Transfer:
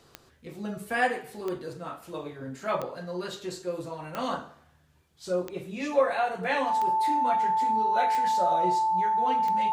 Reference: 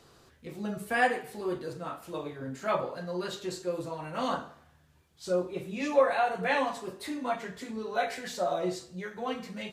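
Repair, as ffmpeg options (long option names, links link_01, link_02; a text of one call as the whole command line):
ffmpeg -i in.wav -af "adeclick=threshold=4,bandreject=frequency=880:width=30" out.wav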